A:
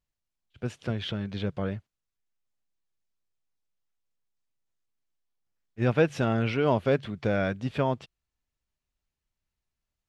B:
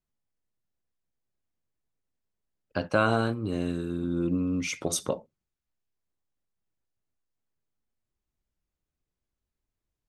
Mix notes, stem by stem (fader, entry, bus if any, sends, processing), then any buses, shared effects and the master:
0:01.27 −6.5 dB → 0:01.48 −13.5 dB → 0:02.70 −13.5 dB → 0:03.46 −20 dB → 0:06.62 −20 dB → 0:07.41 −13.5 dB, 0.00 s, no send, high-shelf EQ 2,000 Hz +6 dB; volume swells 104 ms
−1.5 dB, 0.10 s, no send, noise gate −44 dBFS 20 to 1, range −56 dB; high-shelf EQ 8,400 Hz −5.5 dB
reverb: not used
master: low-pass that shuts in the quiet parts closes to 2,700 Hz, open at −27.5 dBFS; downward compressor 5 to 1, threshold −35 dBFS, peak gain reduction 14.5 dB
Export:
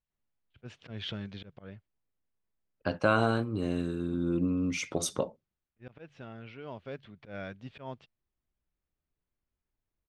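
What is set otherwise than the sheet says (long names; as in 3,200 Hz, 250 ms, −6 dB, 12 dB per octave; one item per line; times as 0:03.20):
stem B: missing noise gate −44 dBFS 20 to 1, range −56 dB
master: missing downward compressor 5 to 1, threshold −35 dBFS, peak gain reduction 14.5 dB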